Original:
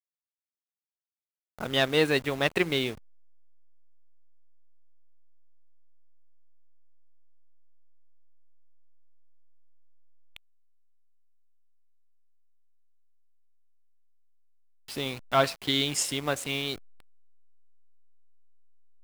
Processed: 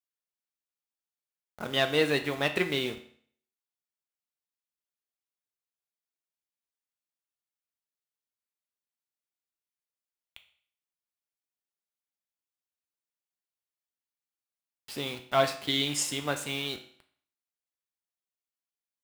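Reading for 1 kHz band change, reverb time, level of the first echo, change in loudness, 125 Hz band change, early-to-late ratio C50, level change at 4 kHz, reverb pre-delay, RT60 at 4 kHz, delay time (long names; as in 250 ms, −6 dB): −1.5 dB, 0.55 s, no echo audible, −1.5 dB, −3.0 dB, 11.5 dB, −1.5 dB, 5 ms, 0.55 s, no echo audible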